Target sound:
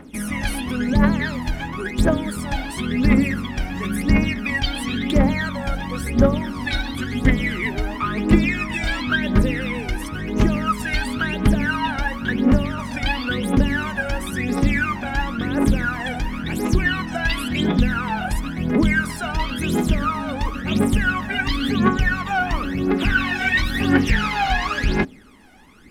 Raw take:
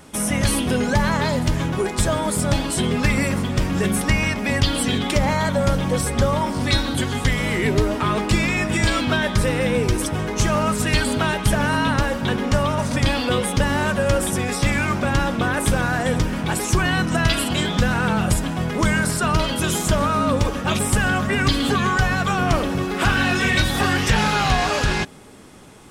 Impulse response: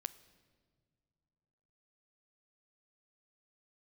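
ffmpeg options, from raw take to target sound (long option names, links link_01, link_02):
-af "aphaser=in_gain=1:out_gain=1:delay=1.4:decay=0.78:speed=0.96:type=triangular,equalizer=frequency=125:width_type=o:width=1:gain=-8,equalizer=frequency=250:width_type=o:width=1:gain=9,equalizer=frequency=2000:width_type=o:width=1:gain=6,equalizer=frequency=8000:width_type=o:width=1:gain=-8,volume=-8.5dB"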